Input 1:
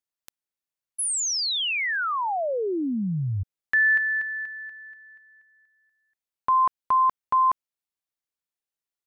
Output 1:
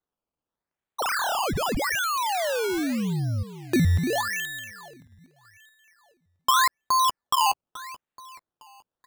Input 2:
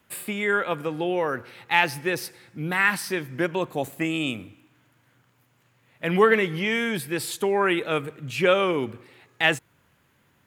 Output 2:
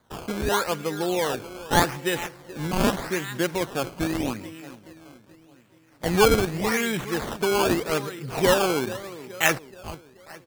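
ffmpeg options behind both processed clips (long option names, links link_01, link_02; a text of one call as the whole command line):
ffmpeg -i in.wav -filter_complex "[0:a]asplit=2[link_01][link_02];[link_02]adelay=429,lowpass=frequency=3500:poles=1,volume=-15dB,asplit=2[link_03][link_04];[link_04]adelay=429,lowpass=frequency=3500:poles=1,volume=0.51,asplit=2[link_05][link_06];[link_06]adelay=429,lowpass=frequency=3500:poles=1,volume=0.51,asplit=2[link_07][link_08];[link_08]adelay=429,lowpass=frequency=3500:poles=1,volume=0.51,asplit=2[link_09][link_10];[link_10]adelay=429,lowpass=frequency=3500:poles=1,volume=0.51[link_11];[link_01][link_03][link_05][link_07][link_09][link_11]amix=inputs=6:normalize=0,acrusher=samples=16:mix=1:aa=0.000001:lfo=1:lforange=16:lforate=0.83" out.wav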